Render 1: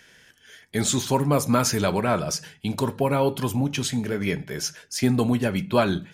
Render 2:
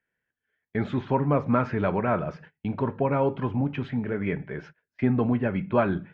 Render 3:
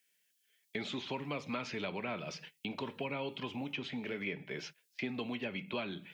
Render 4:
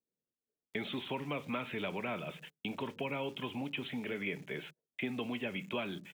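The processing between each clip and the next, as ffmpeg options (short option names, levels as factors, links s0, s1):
-af "lowpass=f=2200:w=0.5412,lowpass=f=2200:w=1.3066,agate=range=0.0562:threshold=0.00794:ratio=16:detection=peak,volume=0.794"
-filter_complex "[0:a]aexciter=amount=11.9:drive=4:freq=2400,highpass=180,acrossover=split=300|1600[s0][s1][s2];[s0]acompressor=threshold=0.01:ratio=4[s3];[s1]acompressor=threshold=0.0141:ratio=4[s4];[s2]acompressor=threshold=0.0112:ratio=4[s5];[s3][s4][s5]amix=inputs=3:normalize=0,volume=0.596"
-filter_complex "[0:a]aresample=8000,aresample=44100,acrossover=split=620[s0][s1];[s1]aeval=exprs='val(0)*gte(abs(val(0)),0.00126)':c=same[s2];[s0][s2]amix=inputs=2:normalize=0,volume=1.12"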